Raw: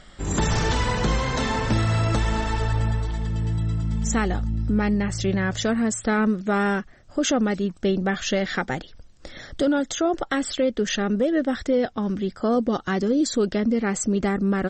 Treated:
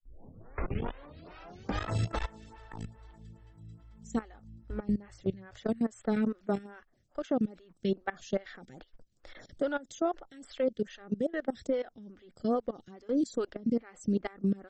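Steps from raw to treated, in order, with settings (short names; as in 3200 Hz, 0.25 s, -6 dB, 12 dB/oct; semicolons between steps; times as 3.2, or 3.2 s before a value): tape start at the beginning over 1.91 s; level quantiser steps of 21 dB; photocell phaser 2.4 Hz; gain -4 dB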